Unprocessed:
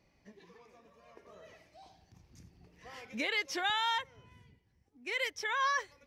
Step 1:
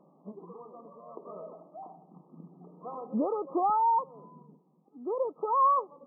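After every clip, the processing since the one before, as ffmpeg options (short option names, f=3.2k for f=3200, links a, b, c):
-filter_complex "[0:a]afftfilt=real='re*between(b*sr/4096,150,1300)':imag='im*between(b*sr/4096,150,1300)':win_size=4096:overlap=0.75,asplit=2[a][b];[b]alimiter=level_in=11dB:limit=-24dB:level=0:latency=1:release=98,volume=-11dB,volume=0dB[c];[a][c]amix=inputs=2:normalize=0,volume=6dB"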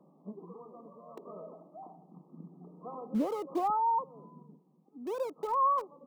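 -filter_complex "[0:a]lowshelf=f=95:g=-10,acrossover=split=330|380[a][b][c];[a]acontrast=76[d];[b]aeval=exprs='(mod(200*val(0)+1,2)-1)/200':c=same[e];[d][e][c]amix=inputs=3:normalize=0,volume=-3.5dB"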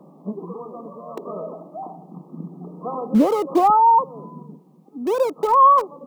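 -af "acontrast=89,volume=7.5dB"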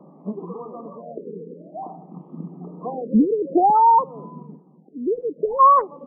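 -af "afftfilt=real='re*lt(b*sr/1024,490*pow(3600/490,0.5+0.5*sin(2*PI*0.53*pts/sr)))':imag='im*lt(b*sr/1024,490*pow(3600/490,0.5+0.5*sin(2*PI*0.53*pts/sr)))':win_size=1024:overlap=0.75"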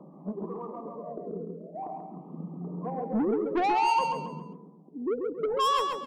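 -filter_complex "[0:a]aphaser=in_gain=1:out_gain=1:delay=3.5:decay=0.28:speed=0.73:type=triangular,asoftclip=type=tanh:threshold=-19.5dB,asplit=2[a][b];[b]aecho=0:1:136|272|408|544:0.562|0.186|0.0612|0.0202[c];[a][c]amix=inputs=2:normalize=0,volume=-4dB"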